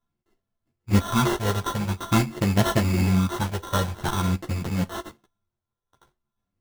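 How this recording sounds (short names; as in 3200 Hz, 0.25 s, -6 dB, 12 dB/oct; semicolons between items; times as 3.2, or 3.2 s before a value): a buzz of ramps at a fixed pitch in blocks of 32 samples; phasing stages 6, 0.47 Hz, lowest notch 260–2000 Hz; aliases and images of a low sample rate 2400 Hz, jitter 0%; a shimmering, thickened sound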